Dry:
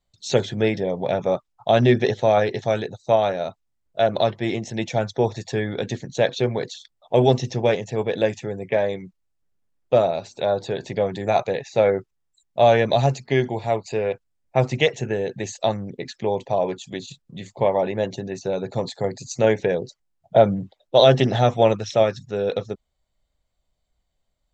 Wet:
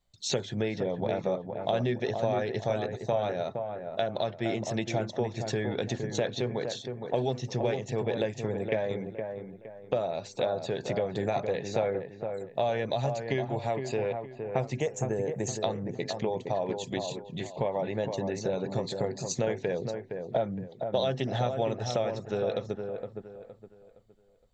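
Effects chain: 14.8–15.48 EQ curve 1000 Hz 0 dB, 4000 Hz -16 dB, 7000 Hz +10 dB; compressor 4:1, threshold -28 dBFS, peak gain reduction 16.5 dB; dark delay 0.465 s, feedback 32%, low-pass 1700 Hz, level -6 dB

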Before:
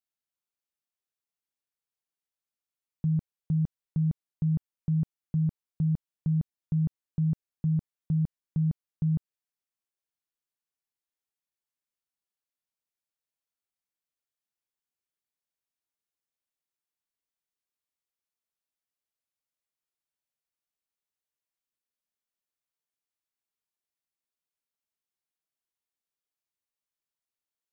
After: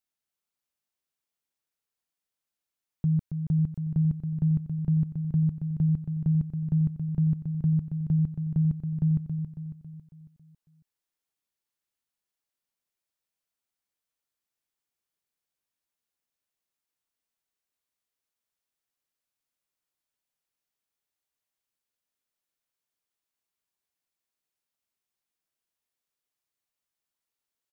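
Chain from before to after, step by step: dynamic EQ 540 Hz, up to -7 dB, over -49 dBFS, Q 0.97; on a send: feedback echo 0.275 s, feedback 49%, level -7.5 dB; on the sum: gain +2.5 dB

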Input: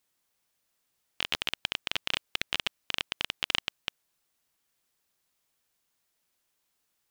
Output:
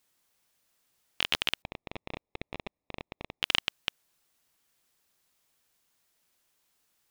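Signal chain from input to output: 1.62–3.43 running mean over 29 samples; in parallel at -5.5 dB: soft clip -17 dBFS, distortion -9 dB

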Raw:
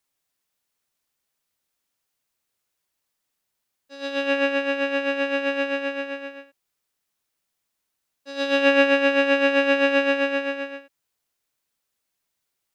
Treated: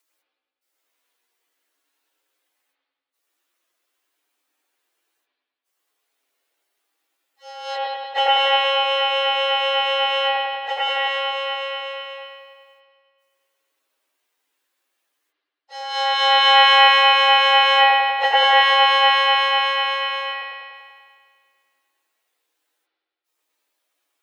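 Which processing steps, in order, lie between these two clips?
step gate "x..xxxxxxxxx" 136 bpm -60 dB; spring tank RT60 1 s, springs 49 ms, chirp 45 ms, DRR -5 dB; frequency shift +260 Hz; plain phase-vocoder stretch 1.9×; gain +5 dB

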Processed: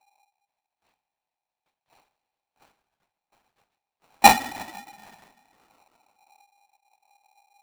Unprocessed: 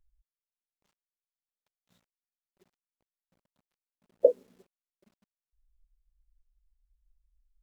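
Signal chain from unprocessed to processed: two-slope reverb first 0.26 s, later 2 s, from -20 dB, DRR -4.5 dB; full-wave rectifier; LPC vocoder at 8 kHz whisper; polarity switched at an audio rate 810 Hz; gain +1.5 dB

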